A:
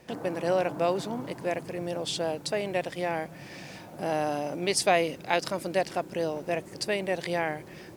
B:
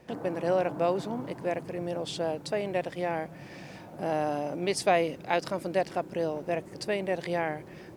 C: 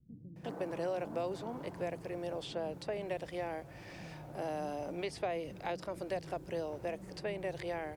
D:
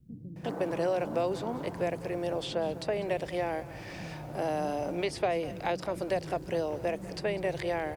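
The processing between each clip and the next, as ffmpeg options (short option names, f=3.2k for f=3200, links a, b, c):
-af "highshelf=f=2.4k:g=-7.5"
-filter_complex "[0:a]acrossover=split=570|3600[a][b][c];[a]acompressor=threshold=-31dB:ratio=4[d];[b]acompressor=threshold=-38dB:ratio=4[e];[c]acompressor=threshold=-52dB:ratio=4[f];[d][e][f]amix=inputs=3:normalize=0,acrossover=split=200[g][h];[h]adelay=360[i];[g][i]amix=inputs=2:normalize=0,asubboost=boost=4:cutoff=95,volume=-3.5dB"
-af "aecho=1:1:199:0.141,volume=7dB"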